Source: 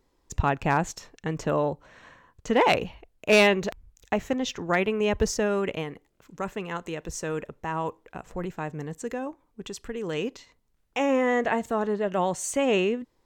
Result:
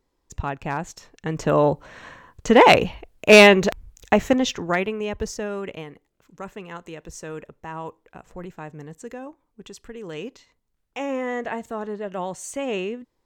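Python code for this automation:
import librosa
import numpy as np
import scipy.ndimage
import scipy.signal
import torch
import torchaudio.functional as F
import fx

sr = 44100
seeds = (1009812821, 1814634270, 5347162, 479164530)

y = fx.gain(x, sr, db=fx.line((0.86, -4.0), (1.69, 8.5), (4.33, 8.5), (5.09, -4.0)))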